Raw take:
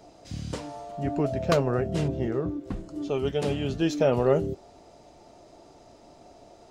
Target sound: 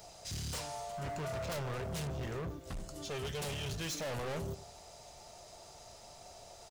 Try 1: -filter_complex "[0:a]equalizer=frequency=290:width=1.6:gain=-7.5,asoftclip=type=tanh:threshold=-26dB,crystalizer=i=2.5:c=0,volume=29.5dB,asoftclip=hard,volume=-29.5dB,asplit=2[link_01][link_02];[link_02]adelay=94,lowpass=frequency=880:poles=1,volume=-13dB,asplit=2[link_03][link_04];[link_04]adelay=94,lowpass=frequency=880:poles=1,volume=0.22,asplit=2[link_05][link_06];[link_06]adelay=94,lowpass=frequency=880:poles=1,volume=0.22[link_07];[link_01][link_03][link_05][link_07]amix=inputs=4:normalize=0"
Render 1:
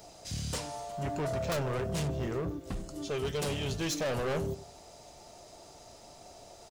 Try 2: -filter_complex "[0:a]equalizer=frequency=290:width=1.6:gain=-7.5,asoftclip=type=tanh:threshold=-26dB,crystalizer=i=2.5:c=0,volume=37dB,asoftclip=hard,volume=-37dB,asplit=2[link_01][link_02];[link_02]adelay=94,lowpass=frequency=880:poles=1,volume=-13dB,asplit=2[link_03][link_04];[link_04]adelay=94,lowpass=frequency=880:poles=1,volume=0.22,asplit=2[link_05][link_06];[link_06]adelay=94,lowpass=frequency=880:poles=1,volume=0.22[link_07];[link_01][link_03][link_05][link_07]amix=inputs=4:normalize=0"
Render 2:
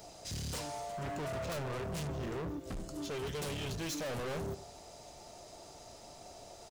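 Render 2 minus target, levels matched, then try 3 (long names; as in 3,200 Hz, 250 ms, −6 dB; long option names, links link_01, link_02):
250 Hz band +3.0 dB
-filter_complex "[0:a]equalizer=frequency=290:width=1.6:gain=-17.5,asoftclip=type=tanh:threshold=-26dB,crystalizer=i=2.5:c=0,volume=37dB,asoftclip=hard,volume=-37dB,asplit=2[link_01][link_02];[link_02]adelay=94,lowpass=frequency=880:poles=1,volume=-13dB,asplit=2[link_03][link_04];[link_04]adelay=94,lowpass=frequency=880:poles=1,volume=0.22,asplit=2[link_05][link_06];[link_06]adelay=94,lowpass=frequency=880:poles=1,volume=0.22[link_07];[link_01][link_03][link_05][link_07]amix=inputs=4:normalize=0"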